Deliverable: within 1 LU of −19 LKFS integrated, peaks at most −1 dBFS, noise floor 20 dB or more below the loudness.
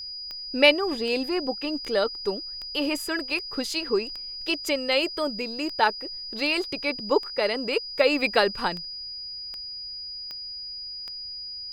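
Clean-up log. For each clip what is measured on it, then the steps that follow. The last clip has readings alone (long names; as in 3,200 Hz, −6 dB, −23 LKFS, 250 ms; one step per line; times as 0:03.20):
number of clicks 15; interfering tone 4,900 Hz; level of the tone −34 dBFS; integrated loudness −26.5 LKFS; sample peak −4.0 dBFS; target loudness −19.0 LKFS
→ click removal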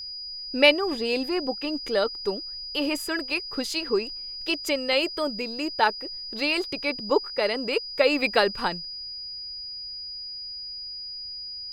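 number of clicks 0; interfering tone 4,900 Hz; level of the tone −34 dBFS
→ notch filter 4,900 Hz, Q 30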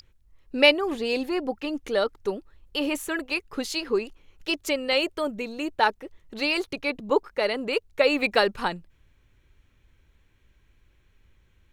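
interfering tone none found; integrated loudness −26.0 LKFS; sample peak −4.0 dBFS; target loudness −19.0 LKFS
→ level +7 dB
brickwall limiter −1 dBFS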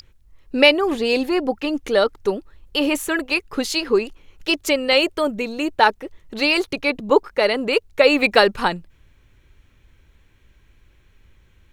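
integrated loudness −19.5 LKFS; sample peak −1.0 dBFS; background noise floor −56 dBFS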